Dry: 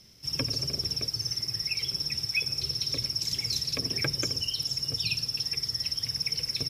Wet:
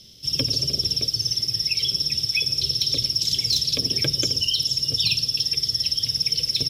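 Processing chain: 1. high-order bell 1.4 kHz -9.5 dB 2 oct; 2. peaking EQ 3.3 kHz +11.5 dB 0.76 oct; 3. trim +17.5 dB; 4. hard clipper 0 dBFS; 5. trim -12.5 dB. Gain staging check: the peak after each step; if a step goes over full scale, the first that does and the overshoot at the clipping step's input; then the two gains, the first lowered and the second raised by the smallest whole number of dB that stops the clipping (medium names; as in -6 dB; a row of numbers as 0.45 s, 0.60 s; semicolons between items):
-16.0 dBFS, -13.0 dBFS, +4.5 dBFS, 0.0 dBFS, -12.5 dBFS; step 3, 4.5 dB; step 3 +12.5 dB, step 5 -7.5 dB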